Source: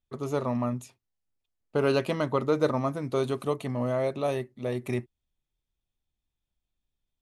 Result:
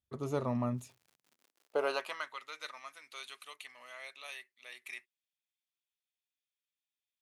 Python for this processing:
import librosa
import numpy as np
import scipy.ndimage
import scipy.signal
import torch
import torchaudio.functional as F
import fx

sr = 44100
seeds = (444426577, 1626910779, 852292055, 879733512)

y = fx.dmg_crackle(x, sr, seeds[0], per_s=fx.line((0.74, 170.0), (2.12, 44.0)), level_db=-46.0, at=(0.74, 2.12), fade=0.02)
y = fx.filter_sweep_highpass(y, sr, from_hz=66.0, to_hz=2200.0, start_s=0.84, end_s=2.38, q=1.6)
y = y * librosa.db_to_amplitude(-5.5)